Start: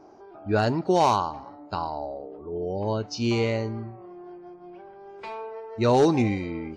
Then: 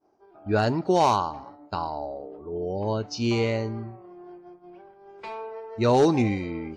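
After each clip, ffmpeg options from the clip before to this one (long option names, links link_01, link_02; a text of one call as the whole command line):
ffmpeg -i in.wav -af "agate=range=-33dB:threshold=-40dB:ratio=3:detection=peak" out.wav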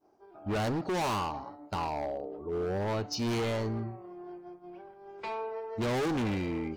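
ffmpeg -i in.wav -af "asoftclip=type=hard:threshold=-28.5dB" out.wav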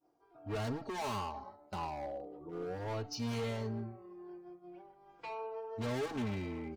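ffmpeg -i in.wav -filter_complex "[0:a]asplit=2[link_01][link_02];[link_02]adelay=3.7,afreqshift=-0.39[link_03];[link_01][link_03]amix=inputs=2:normalize=1,volume=-4dB" out.wav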